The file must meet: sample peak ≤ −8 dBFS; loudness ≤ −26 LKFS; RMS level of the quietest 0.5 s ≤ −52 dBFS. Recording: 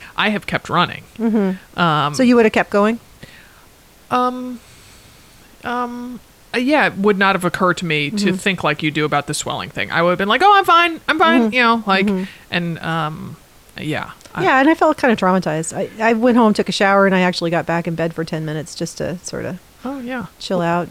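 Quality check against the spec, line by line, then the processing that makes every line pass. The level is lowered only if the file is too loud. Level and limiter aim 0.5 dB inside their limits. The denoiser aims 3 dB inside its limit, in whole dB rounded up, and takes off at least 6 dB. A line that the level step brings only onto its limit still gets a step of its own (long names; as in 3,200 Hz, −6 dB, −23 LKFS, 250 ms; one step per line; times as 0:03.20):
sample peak −3.0 dBFS: out of spec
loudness −16.5 LKFS: out of spec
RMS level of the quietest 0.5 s −47 dBFS: out of spec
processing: level −10 dB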